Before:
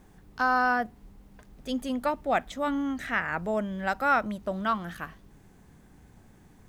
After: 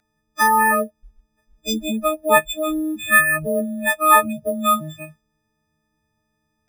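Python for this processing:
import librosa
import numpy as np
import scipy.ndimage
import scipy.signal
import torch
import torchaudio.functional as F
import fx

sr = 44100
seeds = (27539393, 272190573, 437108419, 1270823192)

y = fx.freq_snap(x, sr, grid_st=6)
y = fx.noise_reduce_blind(y, sr, reduce_db=25)
y = np.repeat(scipy.signal.resample_poly(y, 1, 4), 4)[:len(y)]
y = F.gain(torch.from_numpy(y), 7.0).numpy()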